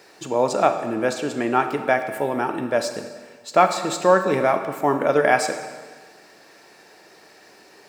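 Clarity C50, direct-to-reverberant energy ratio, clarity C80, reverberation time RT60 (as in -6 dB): 8.5 dB, 7.0 dB, 10.0 dB, 1.5 s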